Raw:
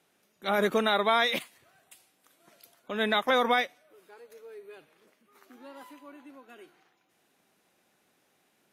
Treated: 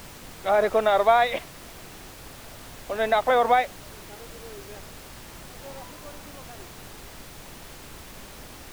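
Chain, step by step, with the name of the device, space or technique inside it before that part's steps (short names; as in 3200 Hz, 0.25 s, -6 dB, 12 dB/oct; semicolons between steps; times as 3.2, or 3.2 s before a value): horn gramophone (BPF 290–3000 Hz; bell 670 Hz +10.5 dB; wow and flutter; pink noise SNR 15 dB)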